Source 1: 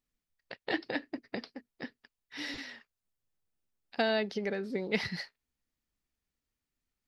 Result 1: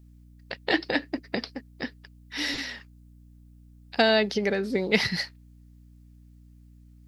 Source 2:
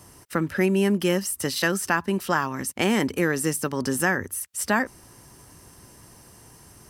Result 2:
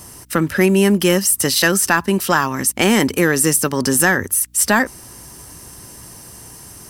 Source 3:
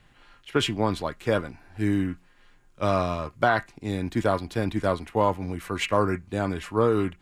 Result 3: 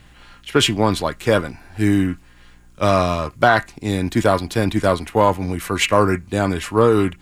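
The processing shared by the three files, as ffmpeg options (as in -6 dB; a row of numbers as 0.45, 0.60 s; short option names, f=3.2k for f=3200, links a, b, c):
-af "highshelf=f=4.4k:g=7,acontrast=62,aeval=exprs='val(0)+0.00251*(sin(2*PI*60*n/s)+sin(2*PI*2*60*n/s)/2+sin(2*PI*3*60*n/s)/3+sin(2*PI*4*60*n/s)/4+sin(2*PI*5*60*n/s)/5)':c=same,volume=1.5dB"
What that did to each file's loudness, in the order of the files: +8.0, +9.0, +7.5 LU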